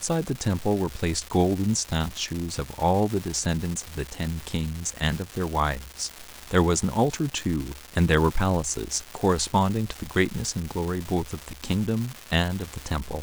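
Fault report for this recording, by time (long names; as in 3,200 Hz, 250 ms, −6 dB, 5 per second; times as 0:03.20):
surface crackle 530 per second −29 dBFS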